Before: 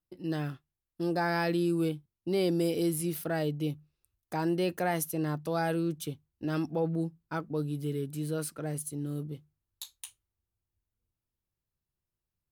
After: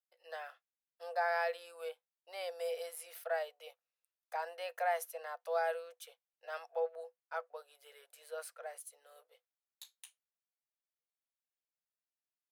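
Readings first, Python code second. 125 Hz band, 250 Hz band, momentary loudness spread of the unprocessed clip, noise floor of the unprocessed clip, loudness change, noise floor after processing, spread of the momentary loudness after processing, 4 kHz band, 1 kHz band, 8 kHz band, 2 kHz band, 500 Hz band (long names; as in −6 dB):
below −40 dB, below −40 dB, 13 LU, below −85 dBFS, −7.5 dB, below −85 dBFS, 21 LU, −8.5 dB, −2.5 dB, −11.0 dB, −3.0 dB, −6.0 dB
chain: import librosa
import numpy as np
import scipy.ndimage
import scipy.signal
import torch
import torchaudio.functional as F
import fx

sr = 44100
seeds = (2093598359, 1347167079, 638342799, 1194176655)

y = fx.dynamic_eq(x, sr, hz=900.0, q=0.82, threshold_db=-45.0, ratio=4.0, max_db=7)
y = scipy.signal.sosfilt(scipy.signal.cheby1(6, 6, 480.0, 'highpass', fs=sr, output='sos'), y)
y = y * 10.0 ** (-5.5 / 20.0)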